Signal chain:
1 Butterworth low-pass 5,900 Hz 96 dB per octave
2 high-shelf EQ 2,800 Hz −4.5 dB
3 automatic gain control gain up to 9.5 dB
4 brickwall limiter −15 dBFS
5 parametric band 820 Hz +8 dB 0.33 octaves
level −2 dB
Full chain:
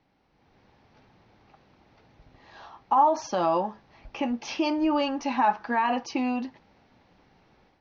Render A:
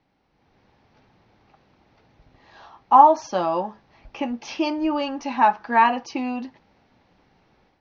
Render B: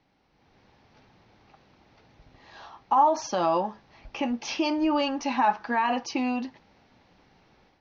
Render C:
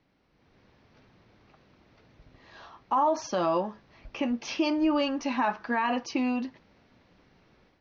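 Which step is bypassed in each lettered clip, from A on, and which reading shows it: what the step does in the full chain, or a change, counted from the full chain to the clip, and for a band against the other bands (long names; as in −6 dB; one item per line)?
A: 4, change in crest factor +4.5 dB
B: 2, 4 kHz band +2.5 dB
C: 5, 1 kHz band −4.5 dB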